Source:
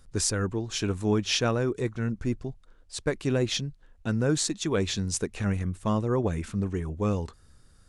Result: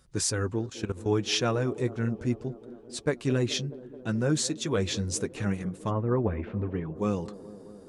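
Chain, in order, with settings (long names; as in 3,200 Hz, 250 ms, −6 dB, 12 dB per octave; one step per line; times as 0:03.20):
0:05.89–0:06.94: low-pass filter 1,900 Hz → 3,500 Hz 24 dB per octave
flanger 0.71 Hz, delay 5.3 ms, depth 4.1 ms, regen −30%
high-pass filter 54 Hz
0:00.66–0:01.06: output level in coarse steps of 15 dB
on a send: delay with a band-pass on its return 214 ms, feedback 77%, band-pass 400 Hz, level −15 dB
on the sum: level +2.5 dB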